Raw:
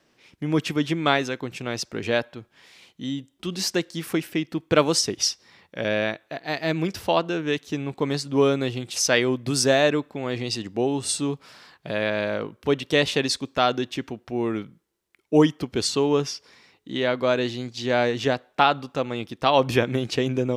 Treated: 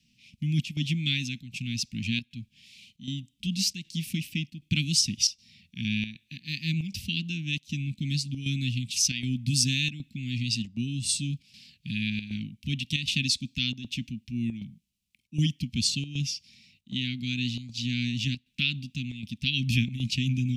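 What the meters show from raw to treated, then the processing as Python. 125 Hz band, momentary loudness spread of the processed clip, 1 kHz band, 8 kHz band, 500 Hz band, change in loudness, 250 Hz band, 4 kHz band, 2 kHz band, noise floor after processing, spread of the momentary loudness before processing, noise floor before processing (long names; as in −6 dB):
+2.0 dB, 11 LU, below −40 dB, −1.0 dB, below −30 dB, −5.0 dB, −5.5 dB, −0.5 dB, −6.0 dB, −72 dBFS, 11 LU, −68 dBFS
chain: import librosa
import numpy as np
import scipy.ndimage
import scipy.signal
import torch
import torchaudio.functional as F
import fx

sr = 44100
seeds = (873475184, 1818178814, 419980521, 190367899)

y = scipy.signal.sosfilt(scipy.signal.cheby1(4, 1.0, [230.0, 2500.0], 'bandstop', fs=sr, output='sos'), x)
y = fx.chopper(y, sr, hz=1.3, depth_pct=65, duty_pct=85)
y = fx.high_shelf(y, sr, hz=4200.0, db=-6.0)
y = F.gain(torch.from_numpy(y), 3.5).numpy()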